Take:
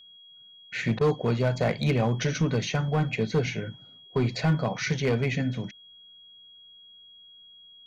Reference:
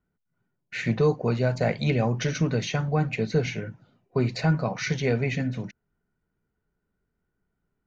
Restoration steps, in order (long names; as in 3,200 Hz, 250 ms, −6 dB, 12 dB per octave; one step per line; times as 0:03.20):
clipped peaks rebuilt −17.5 dBFS
notch filter 3,300 Hz, Q 30
repair the gap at 0:00.99, 18 ms